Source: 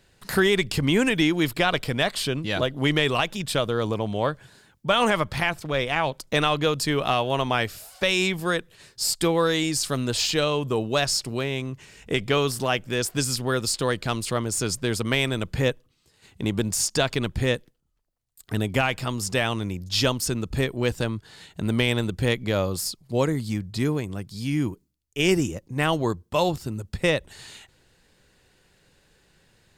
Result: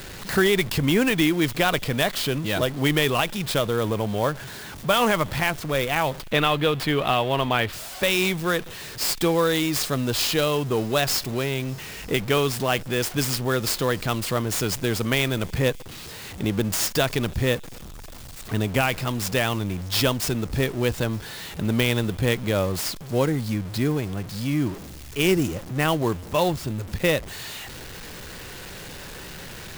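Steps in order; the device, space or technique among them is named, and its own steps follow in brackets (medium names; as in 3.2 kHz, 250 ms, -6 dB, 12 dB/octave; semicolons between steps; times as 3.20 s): early CD player with a faulty converter (jump at every zero crossing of -32.5 dBFS; sampling jitter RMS 0.022 ms); 6.20–7.73 s: resonant high shelf 4.5 kHz -7 dB, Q 1.5; feedback echo behind a high-pass 302 ms, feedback 79%, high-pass 4 kHz, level -23.5 dB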